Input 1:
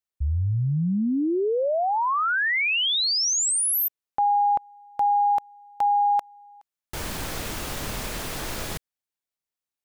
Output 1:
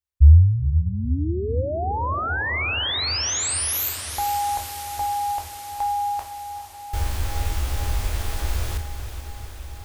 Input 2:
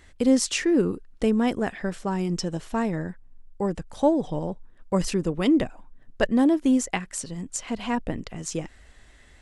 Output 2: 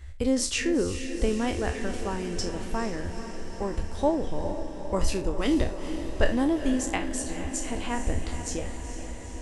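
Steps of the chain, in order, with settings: spectral trails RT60 0.31 s; resonant low shelf 110 Hz +12 dB, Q 3; diffused feedback echo 0.455 s, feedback 72%, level -10 dB; gain -3.5 dB

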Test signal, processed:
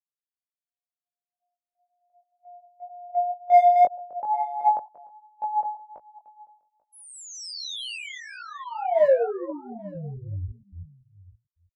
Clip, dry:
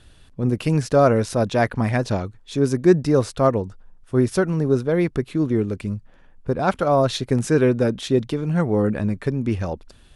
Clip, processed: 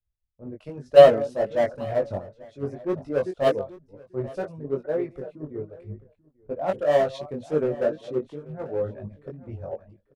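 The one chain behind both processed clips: reverse delay 0.221 s, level -8 dB; LPF 1900 Hz 6 dB/oct; reverb removal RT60 1 s; bell 590 Hz +14.5 dB 0.82 oct; in parallel at -6.5 dB: wavefolder -9 dBFS; on the sum: chorus 2 Hz, delay 19.5 ms, depth 2.1 ms; on a send: echo 0.839 s -13 dB; on the sum: three-band expander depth 100%; gain -13.5 dB

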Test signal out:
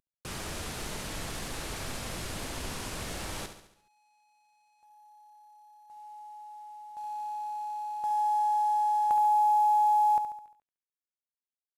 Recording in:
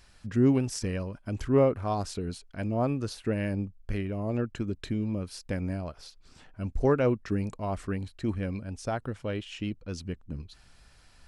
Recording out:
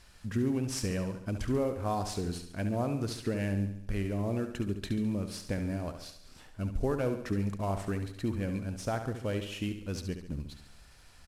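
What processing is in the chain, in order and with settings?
CVSD 64 kbps; compressor 6:1, threshold -27 dBFS; feedback echo 70 ms, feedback 52%, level -9 dB

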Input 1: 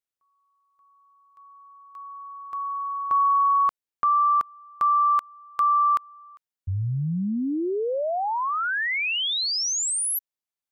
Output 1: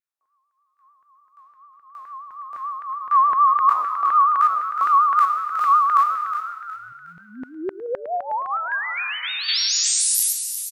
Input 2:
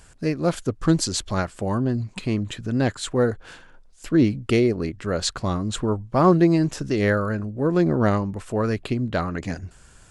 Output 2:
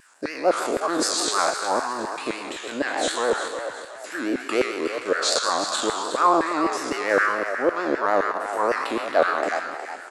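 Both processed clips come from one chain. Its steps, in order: spectral trails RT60 1.44 s; bell 290 Hz +11.5 dB 0.79 oct; notch 3100 Hz, Q 12; in parallel at +1.5 dB: level quantiser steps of 22 dB; on the sum: LFO high-pass saw down 3.9 Hz 510–1700 Hz; vibrato 6.8 Hz 98 cents; on a send: frequency-shifting echo 0.364 s, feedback 37%, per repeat +87 Hz, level -9.5 dB; on the sum: gain -7 dB

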